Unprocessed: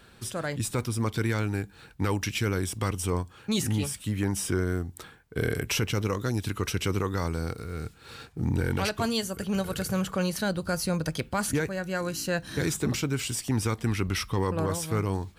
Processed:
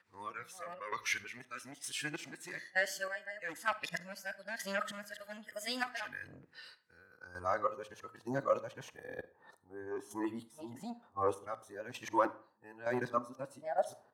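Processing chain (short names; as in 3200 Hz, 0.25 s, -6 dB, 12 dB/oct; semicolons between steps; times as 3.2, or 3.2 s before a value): whole clip reversed; HPF 51 Hz; bell 2500 Hz -12 dB 1.8 oct; notches 50/100 Hz; spectral noise reduction 13 dB; sine folder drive 4 dB, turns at -18 dBFS; chopper 1 Hz, depth 65%, duty 35%; band-pass sweep 1800 Hz -> 790 Hz, 7.43–8.3; speed mistake 44.1 kHz file played as 48 kHz; reverb RT60 0.40 s, pre-delay 38 ms, DRR 15.5 dB; gain +6 dB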